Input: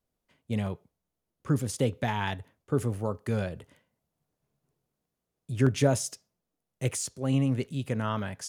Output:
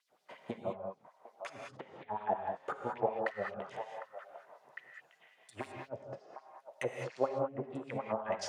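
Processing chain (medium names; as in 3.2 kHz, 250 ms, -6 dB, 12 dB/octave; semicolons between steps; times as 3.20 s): de-esser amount 55%; low-pass that closes with the level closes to 520 Hz, closed at -25 dBFS; high-pass 60 Hz; tilt EQ -4 dB/octave; compression 5:1, threshold -36 dBFS, peak gain reduction 24 dB; 3.12–5.71 s: hard clipper -28.5 dBFS, distortion -30 dB; LFO high-pass sine 5.5 Hz 610–5200 Hz; repeats whose band climbs or falls 754 ms, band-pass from 900 Hz, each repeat 1.4 oct, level -4 dB; gated-style reverb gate 230 ms rising, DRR 2 dB; trim +15 dB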